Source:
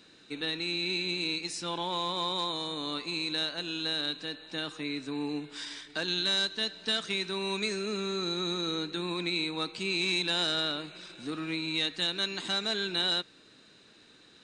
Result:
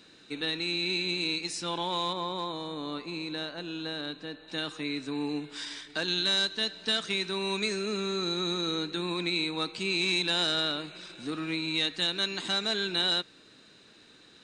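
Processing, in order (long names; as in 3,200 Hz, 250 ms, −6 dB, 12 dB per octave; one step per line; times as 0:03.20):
0:02.13–0:04.48: high-shelf EQ 2,300 Hz −11.5 dB
level +1.5 dB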